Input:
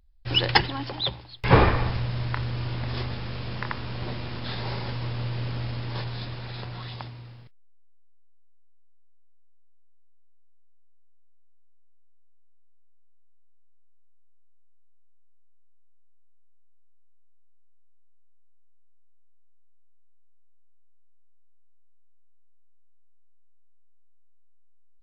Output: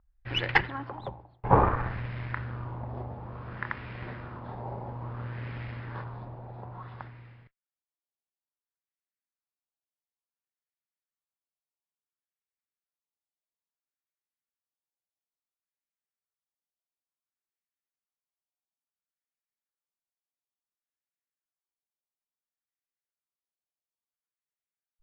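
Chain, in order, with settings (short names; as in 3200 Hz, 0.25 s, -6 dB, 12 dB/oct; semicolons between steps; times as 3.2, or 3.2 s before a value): added harmonics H 2 -8 dB, 4 -20 dB, 8 -22 dB, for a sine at -1.5 dBFS; LFO low-pass sine 0.58 Hz 770–2100 Hz; gain -6.5 dB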